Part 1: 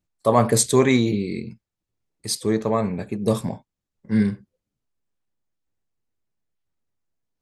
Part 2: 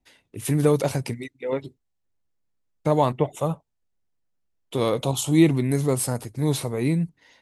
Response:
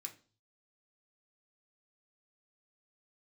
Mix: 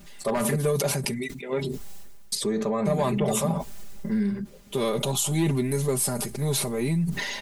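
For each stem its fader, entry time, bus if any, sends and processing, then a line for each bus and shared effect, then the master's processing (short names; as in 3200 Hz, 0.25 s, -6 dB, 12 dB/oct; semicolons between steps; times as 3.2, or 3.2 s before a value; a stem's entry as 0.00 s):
-10.5 dB, 0.00 s, muted 0.56–2.32, no send, wavefolder -8.5 dBFS; fast leveller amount 70%
-3.0 dB, 0.00 s, no send, high shelf 5900 Hz +6.5 dB; soft clip -8 dBFS, distortion -22 dB; sustainer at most 34 dB/s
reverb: off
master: comb 5 ms, depth 84%; compressor 2:1, threshold -23 dBFS, peak gain reduction 5 dB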